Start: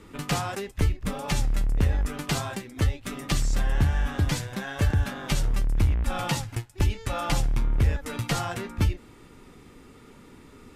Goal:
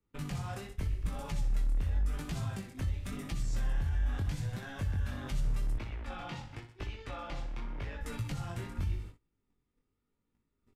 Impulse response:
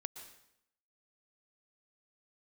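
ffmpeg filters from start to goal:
-filter_complex "[0:a]acrossover=split=200|690[a][b][c];[a]acompressor=threshold=-26dB:ratio=4[d];[b]acompressor=threshold=-42dB:ratio=4[e];[c]acompressor=threshold=-37dB:ratio=4[f];[d][e][f]amix=inputs=3:normalize=0,aecho=1:1:61|122|183|244|305|366:0.299|0.155|0.0807|0.042|0.0218|0.0114,agate=range=-30dB:threshold=-43dB:ratio=16:detection=peak,asettb=1/sr,asplit=3[g][h][i];[g]atrim=end=5.764[j];[h]atrim=start=5.76:end=8.01,asetpts=PTS-STARTPTS,afade=t=in:d=0.004:c=qsin,afade=t=out:st=2.246:d=0.004:c=qsin,acrossover=split=240 5000:gain=0.224 1 0.112[k][l][m];[k][l][m]amix=inputs=3:normalize=0[n];[i]atrim=start=8.006[o];[j][n]acrossfade=d=0.004:c1=hsin:c2=qsin[p];[p][o]acrossfade=d=0.004:c1=qsin:c2=hsin,flanger=delay=17.5:depth=6.2:speed=0.87,alimiter=level_in=3.5dB:limit=-24dB:level=0:latency=1:release=117,volume=-3.5dB,lowshelf=f=140:g=10,volume=-4dB"

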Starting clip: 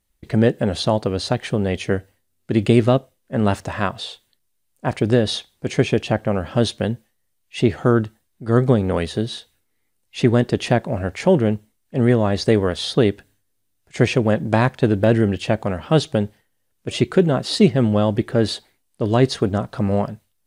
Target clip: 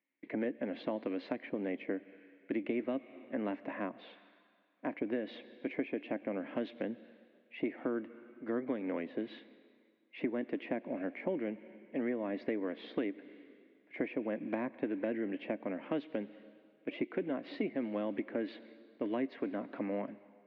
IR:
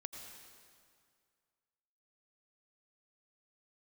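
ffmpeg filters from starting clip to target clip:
-filter_complex "[0:a]highpass=f=260:w=0.5412,highpass=f=260:w=1.3066,equalizer=f=280:t=q:w=4:g=9,equalizer=f=410:t=q:w=4:g=-6,equalizer=f=800:t=q:w=4:g=-6,equalizer=f=1.3k:t=q:w=4:g=-8,equalizer=f=2.2k:t=q:w=4:g=9,lowpass=f=2.4k:w=0.5412,lowpass=f=2.4k:w=1.3066,asplit=2[a][b];[1:a]atrim=start_sample=2205,lowpass=5.5k,highshelf=f=2.6k:g=11.5[c];[b][c]afir=irnorm=-1:irlink=0,volume=-15dB[d];[a][d]amix=inputs=2:normalize=0,acrossover=split=450|1100[e][f][g];[e]acompressor=threshold=-28dB:ratio=4[h];[f]acompressor=threshold=-33dB:ratio=4[i];[g]acompressor=threshold=-41dB:ratio=4[j];[h][i][j]amix=inputs=3:normalize=0,volume=-8.5dB"

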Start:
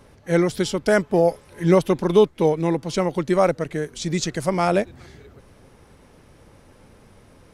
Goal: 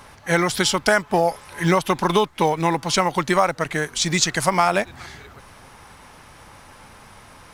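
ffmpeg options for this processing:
-filter_complex "[0:a]lowshelf=f=650:t=q:w=1.5:g=-9,asplit=2[a][b];[b]acrusher=bits=4:mode=log:mix=0:aa=0.000001,volume=-12dB[c];[a][c]amix=inputs=2:normalize=0,acompressor=threshold=-22dB:ratio=6,volume=8.5dB"

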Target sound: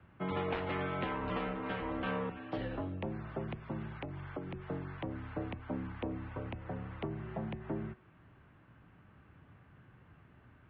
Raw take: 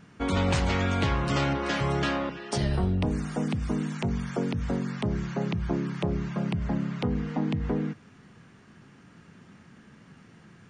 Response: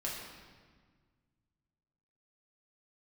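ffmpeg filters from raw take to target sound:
-filter_complex "[0:a]highpass=f=180:t=q:w=0.5412,highpass=f=180:t=q:w=1.307,lowpass=f=3.5k:t=q:w=0.5176,lowpass=f=3.5k:t=q:w=0.7071,lowpass=f=3.5k:t=q:w=1.932,afreqshift=-92,acrossover=split=230[a][b];[a]alimiter=level_in=9dB:limit=-24dB:level=0:latency=1:release=381,volume=-9dB[c];[b]highshelf=f=2.3k:g=-9.5[d];[c][d]amix=inputs=2:normalize=0,asettb=1/sr,asplit=3[e][f][g];[e]atrim=end=1.374[h];[f]atrim=start=1.37:end=2.07,asetpts=PTS-STARTPTS,afade=t=in:d=0.004:c=qsin,afade=t=out:st=0.696:d=0.004:c=qsin,tremolo=f=220:d=0.462[i];[g]atrim=start=2.066[j];[h][i]acrossfade=d=0.004:c1=hsin:c2=qsin[k];[k][j]acrossfade=d=0.004:c1=qsin:c2=hsin,bandreject=f=369.5:t=h:w=4,bandreject=f=739:t=h:w=4,bandreject=f=1.1085k:t=h:w=4,bandreject=f=1.478k:t=h:w=4,bandreject=f=1.8475k:t=h:w=4,bandreject=f=2.217k:t=h:w=4,bandreject=f=2.5865k:t=h:w=4,asettb=1/sr,asplit=3[l][m][n];[l]atrim=end=3.944[o];[m]atrim=start=3.94:end=4.54,asetpts=PTS-STARTPTS,afade=t=in:d=0.004:c=qsin,afade=t=out:st=0.596:d=0.004:c=qsin,acompressor=threshold=-33dB:ratio=5[p];[n]atrim=start=4.536[q];[o][p]acrossfade=d=0.004:c1=hsin:c2=qsin[r];[r][q]acrossfade=d=0.004:c1=qsin:c2=hsin,volume=-4.5dB"

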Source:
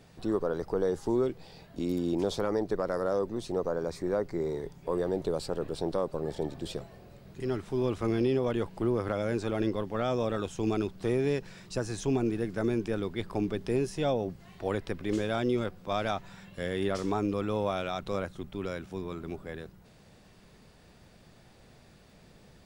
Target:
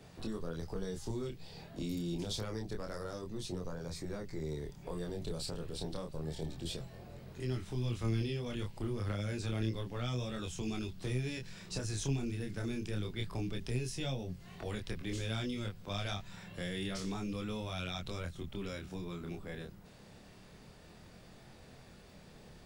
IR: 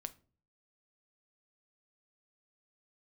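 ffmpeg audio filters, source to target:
-filter_complex "[0:a]acrossover=split=170|2200[a][b][c];[b]acompressor=threshold=-44dB:ratio=6[d];[a][d][c]amix=inputs=3:normalize=0,flanger=delay=22.5:depth=7.3:speed=0.28,volume=4dB"

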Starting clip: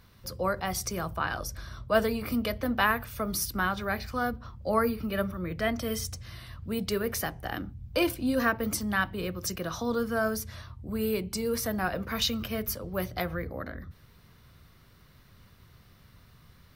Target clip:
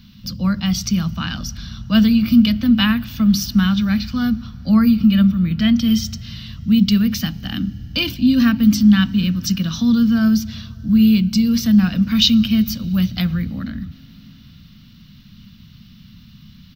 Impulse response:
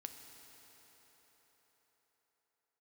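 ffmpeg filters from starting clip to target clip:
-filter_complex "[0:a]firequalizer=gain_entry='entry(100,0);entry(210,14);entry(390,-19);entry(1400,-7);entry(2000,-6);entry(2900,7);entry(5400,2);entry(10000,-22);entry(15000,-1)':delay=0.05:min_phase=1,asplit=2[a][b];[1:a]atrim=start_sample=2205[c];[b][c]afir=irnorm=-1:irlink=0,volume=-9.5dB[d];[a][d]amix=inputs=2:normalize=0,volume=7.5dB"

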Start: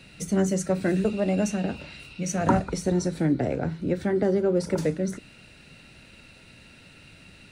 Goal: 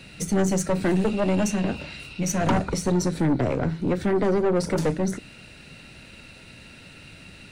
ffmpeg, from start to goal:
-af "aeval=exprs='(tanh(14.1*val(0)+0.4)-tanh(0.4))/14.1':c=same,volume=6dB"

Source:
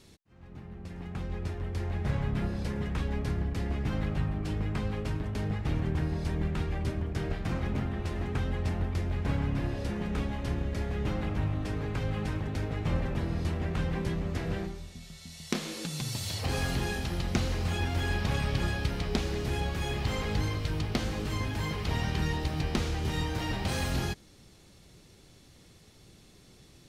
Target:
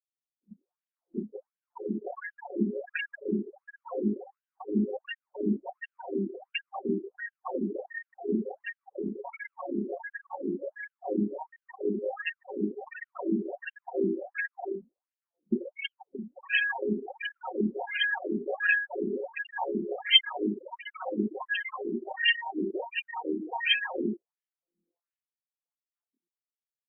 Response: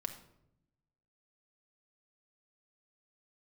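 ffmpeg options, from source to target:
-filter_complex "[0:a]bandreject=f=50:t=h:w=6,bandreject=f=100:t=h:w=6,bandreject=f=150:t=h:w=6,bandreject=f=200:t=h:w=6,bandreject=f=250:t=h:w=6,bandreject=f=300:t=h:w=6,bandreject=f=350:t=h:w=6,bandreject=f=400:t=h:w=6,aeval=exprs='0.188*(cos(1*acos(clip(val(0)/0.188,-1,1)))-cos(1*PI/2))+0.0944*(cos(5*acos(clip(val(0)/0.188,-1,1)))-cos(5*PI/2))+0.0168*(cos(6*acos(clip(val(0)/0.188,-1,1)))-cos(6*PI/2))+0.00299*(cos(7*acos(clip(val(0)/0.188,-1,1)))-cos(7*PI/2))+0.075*(cos(8*acos(clip(val(0)/0.188,-1,1)))-cos(8*PI/2))':c=same,acrossover=split=730[a][b];[a]aeval=exprs='val(0)*(1-0.7/2+0.7/2*cos(2*PI*4.2*n/s))':c=same[c];[b]aeval=exprs='val(0)*(1-0.7/2-0.7/2*cos(2*PI*4.2*n/s))':c=same[d];[c][d]amix=inputs=2:normalize=0,bandreject=f=2k:w=20,aecho=1:1:5.4:0.58,aecho=1:1:1073|2146:0.0794|0.0278,asplit=2[e][f];[1:a]atrim=start_sample=2205[g];[f][g]afir=irnorm=-1:irlink=0,volume=-6.5dB[h];[e][h]amix=inputs=2:normalize=0,afftfilt=real='re*gte(hypot(re,im),0.1)':imag='im*gte(hypot(re,im),0.1)':win_size=1024:overlap=0.75,lowpass=f=3.4k:t=q:w=15,afftfilt=real='re*between(b*sr/1024,280*pow(2300/280,0.5+0.5*sin(2*PI*1.4*pts/sr))/1.41,280*pow(2300/280,0.5+0.5*sin(2*PI*1.4*pts/sr))*1.41)':imag='im*between(b*sr/1024,280*pow(2300/280,0.5+0.5*sin(2*PI*1.4*pts/sr))/1.41,280*pow(2300/280,0.5+0.5*sin(2*PI*1.4*pts/sr))*1.41)':win_size=1024:overlap=0.75"

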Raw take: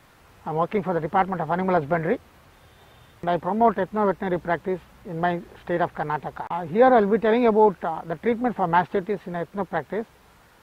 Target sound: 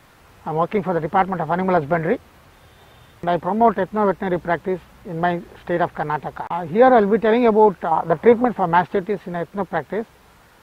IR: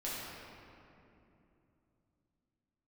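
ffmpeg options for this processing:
-filter_complex "[0:a]asettb=1/sr,asplit=3[a][b][c];[a]atrim=end=7.914[d];[b]atrim=start=7.91:end=8.45,asetpts=PTS-STARTPTS,afade=t=in:d=0.004:c=qsin,afade=t=out:st=0.536:d=0.004:c=qsin,equalizer=f=125:t=o:w=1:g=6,equalizer=f=500:t=o:w=1:g=6,equalizer=f=1k:t=o:w=1:g=10[e];[c]atrim=start=8.446[f];[d][e]acrossfade=d=0.004:c1=hsin:c2=qsin[g];[g][f]acrossfade=d=0.004:c1=qsin:c2=hsin,volume=3.5dB"

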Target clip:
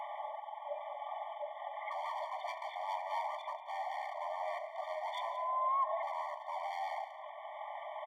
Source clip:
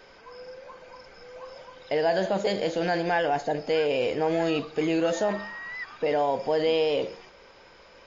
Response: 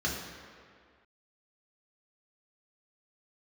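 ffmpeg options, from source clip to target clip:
-filter_complex "[0:a]asetrate=24046,aresample=44100,atempo=1.83401,acontrast=33,asplit=2[a][b];[b]asubboost=boost=2.5:cutoff=130[c];[1:a]atrim=start_sample=2205,adelay=87[d];[c][d]afir=irnorm=-1:irlink=0,volume=-22dB[e];[a][e]amix=inputs=2:normalize=0,volume=23dB,asoftclip=hard,volume=-23dB,acompressor=threshold=-40dB:ratio=5,equalizer=f=330:w=0.39:g=11,aecho=1:1:178:0.2,afftfilt=real='re*eq(mod(floor(b*sr/1024/600),2),1)':imag='im*eq(mod(floor(b*sr/1024/600),2),1)':win_size=1024:overlap=0.75,volume=4.5dB"

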